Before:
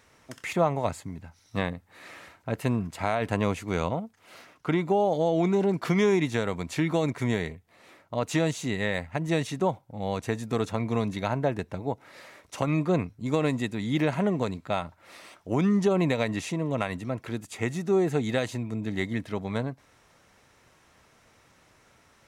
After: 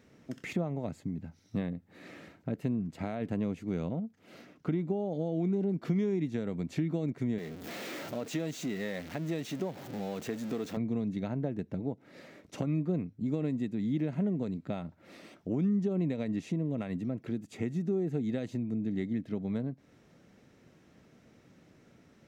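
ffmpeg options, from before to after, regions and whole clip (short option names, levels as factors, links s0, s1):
-filter_complex "[0:a]asettb=1/sr,asplit=3[s0][s1][s2];[s0]atrim=end=7.384[s3];[s1]atrim=start=7.38:end=10.77,asetpts=PTS-STARTPTS,afade=t=in:d=0.004:c=qsin,afade=t=out:st=3.386:d=0.004:c=qsin,aeval=exprs='val(0)+0.5*0.0355*sgn(val(0))':c=same,highpass=f=580:p=1[s4];[s2]atrim=start=10.766[s5];[s3][s4]acrossfade=d=0.004:c1=hsin:c2=qsin[s6];[s6][s5]acrossfade=d=0.004:c1=qsin:c2=hsin,equalizer=f=240:t=o:w=2.3:g=14,acompressor=threshold=0.0398:ratio=2.5,equalizer=f=160:t=o:w=0.67:g=3,equalizer=f=1000:t=o:w=0.67:g=-7,equalizer=f=10000:t=o:w=0.67:g=-8,volume=0.473"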